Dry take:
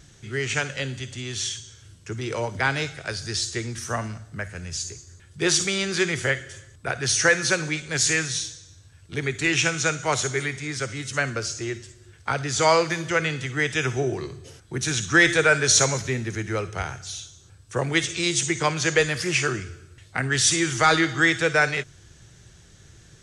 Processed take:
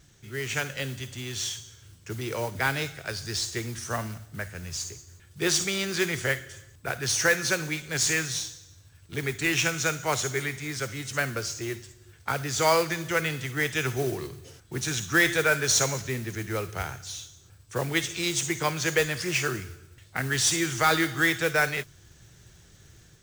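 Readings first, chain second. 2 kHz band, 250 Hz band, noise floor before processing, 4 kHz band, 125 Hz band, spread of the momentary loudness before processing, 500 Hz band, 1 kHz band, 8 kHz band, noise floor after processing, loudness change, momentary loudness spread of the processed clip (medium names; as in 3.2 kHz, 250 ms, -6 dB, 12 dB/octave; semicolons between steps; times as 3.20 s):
-4.0 dB, -4.0 dB, -52 dBFS, -3.5 dB, -3.5 dB, 15 LU, -4.0 dB, -4.0 dB, -3.5 dB, -55 dBFS, -4.0 dB, 15 LU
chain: level rider gain up to 4 dB; modulation noise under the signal 15 dB; trim -7 dB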